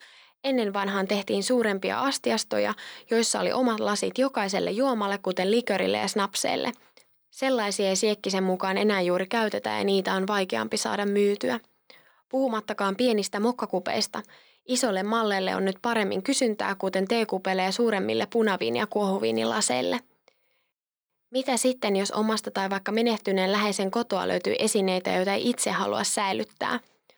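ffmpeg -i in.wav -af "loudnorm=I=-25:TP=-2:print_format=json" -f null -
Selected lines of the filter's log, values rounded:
"input_i" : "-26.0",
"input_tp" : "-10.4",
"input_lra" : "2.1",
"input_thresh" : "-36.3",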